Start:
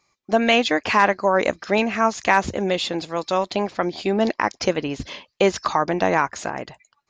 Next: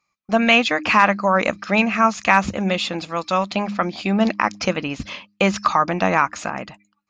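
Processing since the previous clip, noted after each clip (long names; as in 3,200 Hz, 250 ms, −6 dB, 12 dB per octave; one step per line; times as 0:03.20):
thirty-one-band graphic EQ 200 Hz +8 dB, 400 Hz −8 dB, 1,250 Hz +8 dB, 2,500 Hz +7 dB
noise gate −40 dBFS, range −10 dB
hum removal 102.1 Hz, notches 3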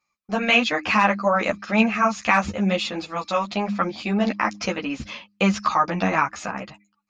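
string-ensemble chorus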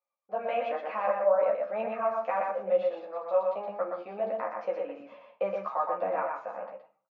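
four-pole ladder band-pass 620 Hz, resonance 65%
single-tap delay 120 ms −4 dB
convolution reverb RT60 0.45 s, pre-delay 4 ms, DRR 5 dB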